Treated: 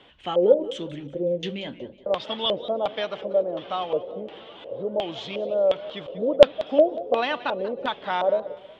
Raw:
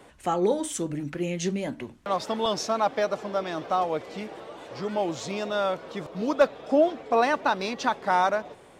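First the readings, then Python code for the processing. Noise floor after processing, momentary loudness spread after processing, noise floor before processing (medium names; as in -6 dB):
-49 dBFS, 15 LU, -52 dBFS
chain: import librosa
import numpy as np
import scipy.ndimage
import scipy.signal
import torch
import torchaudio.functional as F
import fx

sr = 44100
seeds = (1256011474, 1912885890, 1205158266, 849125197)

y = fx.filter_lfo_lowpass(x, sr, shape='square', hz=1.4, low_hz=540.0, high_hz=3200.0, q=6.7)
y = fx.echo_warbled(y, sr, ms=184, feedback_pct=37, rate_hz=2.8, cents=150, wet_db=-17)
y = y * 10.0 ** (-4.5 / 20.0)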